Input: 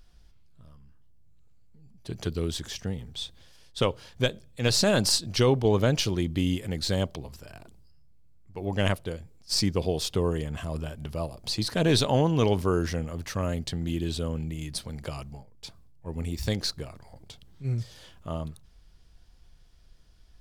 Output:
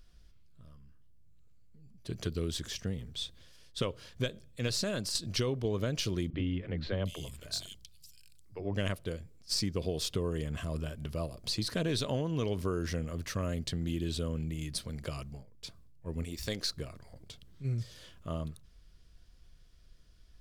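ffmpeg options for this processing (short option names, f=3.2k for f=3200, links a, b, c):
-filter_complex "[0:a]asettb=1/sr,asplit=3[a][b][c];[a]atrim=end=6.304[d];[b]atrim=start=6.3:end=8.75,asetpts=PTS-STARTPTS,afade=t=in:d=0.004:c=qsin,afade=t=out:st=2.446:d=0.004:c=qsin,acrossover=split=250|3200[e][f][g];[e]adelay=30[h];[g]adelay=700[i];[h][f][i]amix=inputs=3:normalize=0,atrim=end_sample=108045[j];[c]atrim=start=8.746[k];[d][j]acrossfade=d=0.004:c1=hsin:c2=qsin[l];[l][k]acrossfade=d=0.004:c1=qsin:c2=hsin,asettb=1/sr,asplit=3[m][n][o];[m]atrim=end=16.244[p];[n]atrim=start=16.24:end=16.71,asetpts=PTS-STARTPTS,afade=t=in:d=0.004:c=qsin,afade=t=out:st=0.466:d=0.004:c=qsin,equalizer=f=91:w=0.42:g=-9.5[q];[o]atrim=start=16.706[r];[p][q]acrossfade=d=0.004:c1=hsin:c2=qsin[s];[s][r]acrossfade=d=0.004:c1=qsin:c2=hsin,asplit=2[t][u];[t]atrim=end=5.15,asetpts=PTS-STARTPTS,afade=t=out:st=4.48:d=0.67:silence=0.281838[v];[u]atrim=start=5.15,asetpts=PTS-STARTPTS,afade=t=in:d=0.004:c=hsin:silence=0.281838[w];[v][w]concat=n=2:v=0:a=1,equalizer=f=830:t=o:w=0.31:g=-10.5,acompressor=threshold=-26dB:ratio=5,volume=-2.5dB"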